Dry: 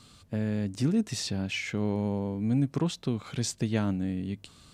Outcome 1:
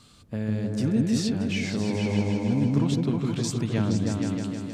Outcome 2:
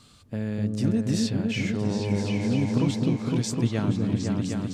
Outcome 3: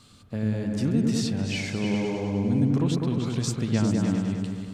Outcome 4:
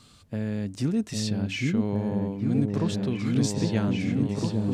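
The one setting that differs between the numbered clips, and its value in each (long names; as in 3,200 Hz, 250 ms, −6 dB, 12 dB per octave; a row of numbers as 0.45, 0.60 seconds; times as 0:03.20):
echo whose low-pass opens from repeat to repeat, delay time: 157, 254, 101, 806 milliseconds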